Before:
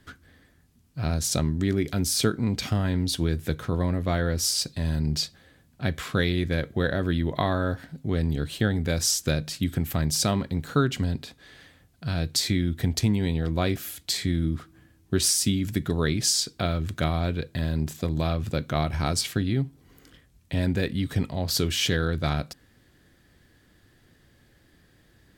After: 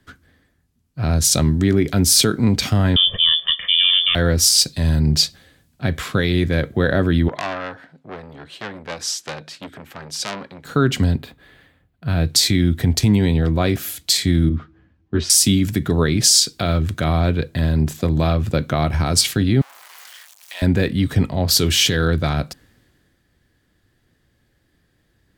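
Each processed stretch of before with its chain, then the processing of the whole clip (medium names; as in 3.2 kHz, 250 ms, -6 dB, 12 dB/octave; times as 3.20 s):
2.96–4.15 s: frequency inversion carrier 3.4 kHz + comb 1.7 ms, depth 68%
7.28–10.65 s: band-pass filter 1.1 kHz, Q 0.52 + transformer saturation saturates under 3.5 kHz
11.15–12.25 s: median filter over 5 samples + peaking EQ 5.6 kHz -10 dB 0.74 oct
14.49–15.30 s: distance through air 200 m + three-phase chorus
19.61–20.62 s: jump at every zero crossing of -37.5 dBFS + high-pass 810 Hz 24 dB/octave
whole clip: loudness maximiser +14 dB; three bands expanded up and down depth 40%; trim -5 dB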